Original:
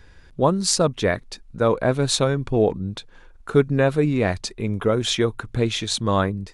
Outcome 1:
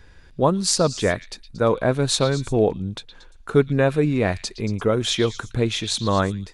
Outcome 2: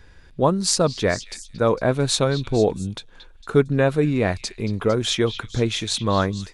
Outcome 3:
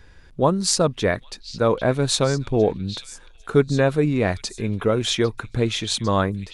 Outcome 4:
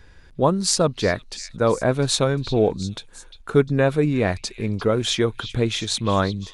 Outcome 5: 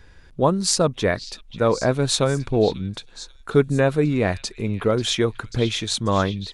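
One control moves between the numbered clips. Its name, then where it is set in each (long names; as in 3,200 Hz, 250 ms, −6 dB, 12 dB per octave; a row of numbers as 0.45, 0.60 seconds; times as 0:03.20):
echo through a band-pass that steps, delay time: 115, 227, 801, 351, 539 milliseconds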